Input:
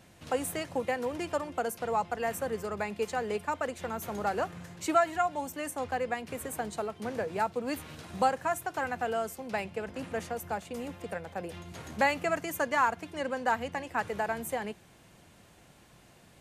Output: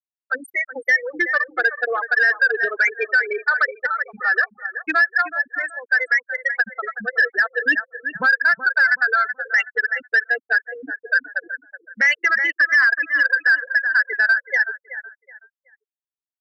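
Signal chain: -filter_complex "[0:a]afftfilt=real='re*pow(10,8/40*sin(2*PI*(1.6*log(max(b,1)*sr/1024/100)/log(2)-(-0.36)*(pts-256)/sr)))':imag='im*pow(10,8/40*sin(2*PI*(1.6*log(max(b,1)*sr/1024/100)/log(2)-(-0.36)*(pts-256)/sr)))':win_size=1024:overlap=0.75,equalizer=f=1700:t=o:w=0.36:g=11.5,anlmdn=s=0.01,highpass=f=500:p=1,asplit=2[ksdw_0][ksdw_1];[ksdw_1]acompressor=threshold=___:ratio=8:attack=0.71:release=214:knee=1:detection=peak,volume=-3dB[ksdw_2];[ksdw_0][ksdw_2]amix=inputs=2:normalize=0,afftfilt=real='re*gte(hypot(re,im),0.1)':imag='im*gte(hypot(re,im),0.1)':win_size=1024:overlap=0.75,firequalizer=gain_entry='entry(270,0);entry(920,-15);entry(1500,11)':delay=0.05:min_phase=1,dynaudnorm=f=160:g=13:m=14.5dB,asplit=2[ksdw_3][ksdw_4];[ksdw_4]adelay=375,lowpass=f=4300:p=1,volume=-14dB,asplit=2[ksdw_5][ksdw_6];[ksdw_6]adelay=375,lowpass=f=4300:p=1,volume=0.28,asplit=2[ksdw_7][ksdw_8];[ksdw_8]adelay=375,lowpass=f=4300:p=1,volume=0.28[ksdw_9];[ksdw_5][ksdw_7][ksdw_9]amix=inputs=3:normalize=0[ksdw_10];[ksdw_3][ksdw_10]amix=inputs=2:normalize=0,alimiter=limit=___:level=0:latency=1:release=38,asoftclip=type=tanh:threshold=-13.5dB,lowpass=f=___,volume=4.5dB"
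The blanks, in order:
-40dB, -11dB, 6300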